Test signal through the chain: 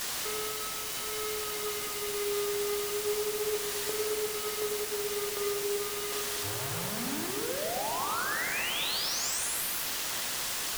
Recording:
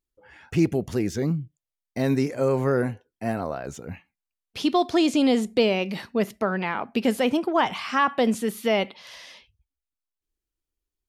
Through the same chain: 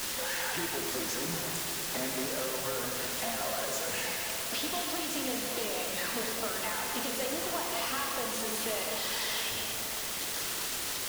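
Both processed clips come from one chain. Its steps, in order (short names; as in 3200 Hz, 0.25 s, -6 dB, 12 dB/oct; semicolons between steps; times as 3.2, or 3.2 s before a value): zero-crossing step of -25 dBFS; notch 2300 Hz, Q 7.1; reverb removal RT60 1.8 s; weighting filter A; compressor 10:1, threshold -37 dBFS; vibrato 0.32 Hz 45 cents; on a send: swelling echo 0.117 s, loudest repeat 5, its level -17 dB; on the sum: non-linear reverb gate 0.31 s flat, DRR 0 dB; requantised 6-bit, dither triangular; Doppler distortion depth 0.16 ms; gain +1 dB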